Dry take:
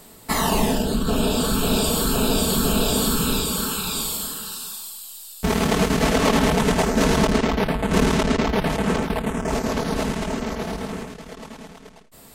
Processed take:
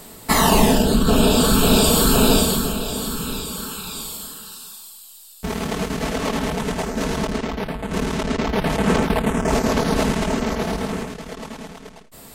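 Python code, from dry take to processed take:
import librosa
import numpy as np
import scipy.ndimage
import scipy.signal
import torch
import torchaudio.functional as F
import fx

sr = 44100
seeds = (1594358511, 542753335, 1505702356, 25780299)

y = fx.gain(x, sr, db=fx.line((2.34, 5.5), (2.79, -5.0), (8.07, -5.0), (8.98, 4.5)))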